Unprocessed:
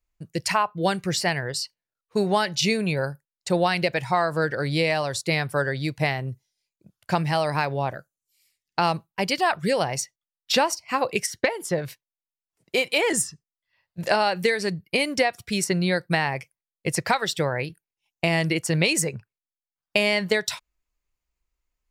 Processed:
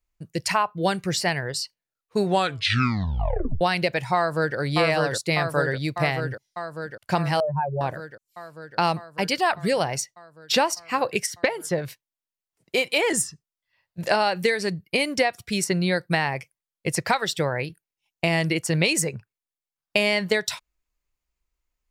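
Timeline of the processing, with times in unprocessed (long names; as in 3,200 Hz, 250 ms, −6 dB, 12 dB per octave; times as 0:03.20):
0:02.25: tape stop 1.36 s
0:04.16–0:04.57: delay throw 600 ms, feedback 75%, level −2 dB
0:07.40–0:07.81: expanding power law on the bin magnitudes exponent 3.3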